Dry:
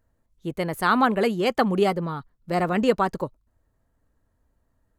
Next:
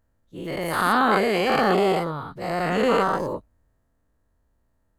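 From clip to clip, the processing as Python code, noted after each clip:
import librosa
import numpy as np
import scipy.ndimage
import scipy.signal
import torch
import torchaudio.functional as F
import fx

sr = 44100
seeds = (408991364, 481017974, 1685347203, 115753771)

y = fx.spec_dilate(x, sr, span_ms=240)
y = fx.transient(y, sr, attack_db=-5, sustain_db=1)
y = y * 10.0 ** (-5.5 / 20.0)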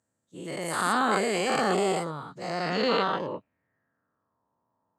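y = fx.filter_sweep_lowpass(x, sr, from_hz=7900.0, to_hz=1000.0, start_s=2.24, end_s=4.43, q=4.9)
y = scipy.signal.sosfilt(scipy.signal.butter(4, 120.0, 'highpass', fs=sr, output='sos'), y)
y = fx.high_shelf(y, sr, hz=10000.0, db=6.5)
y = y * 10.0 ** (-5.5 / 20.0)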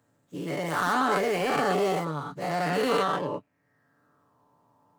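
y = scipy.ndimage.median_filter(x, 9, mode='constant')
y = y + 0.51 * np.pad(y, (int(6.9 * sr / 1000.0), 0))[:len(y)]
y = fx.band_squash(y, sr, depth_pct=40)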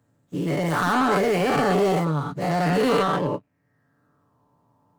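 y = fx.low_shelf(x, sr, hz=240.0, db=10.0)
y = fx.leveller(y, sr, passes=1)
y = fx.end_taper(y, sr, db_per_s=490.0)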